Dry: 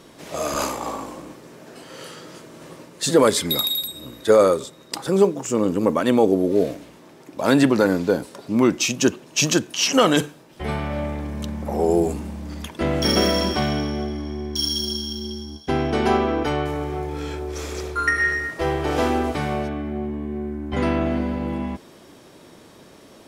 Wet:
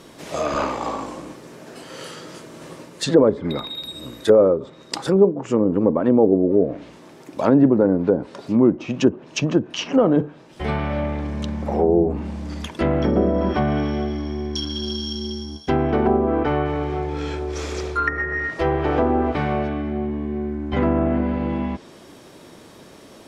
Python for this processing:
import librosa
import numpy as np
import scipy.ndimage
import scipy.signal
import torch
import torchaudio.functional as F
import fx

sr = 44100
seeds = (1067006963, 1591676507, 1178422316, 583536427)

y = fx.env_lowpass_down(x, sr, base_hz=630.0, full_db=-15.0)
y = F.gain(torch.from_numpy(y), 2.5).numpy()